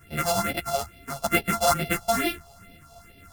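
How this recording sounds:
a buzz of ramps at a fixed pitch in blocks of 64 samples
phaser sweep stages 4, 2.3 Hz, lowest notch 310–1,200 Hz
tremolo saw up 2.9 Hz, depth 35%
a shimmering, thickened sound

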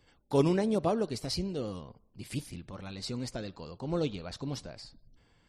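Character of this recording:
background noise floor −67 dBFS
spectral slope −6.0 dB per octave

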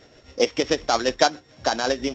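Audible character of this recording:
a buzz of ramps at a fixed pitch in blocks of 8 samples
tremolo triangle 7.5 Hz, depth 55%
mu-law

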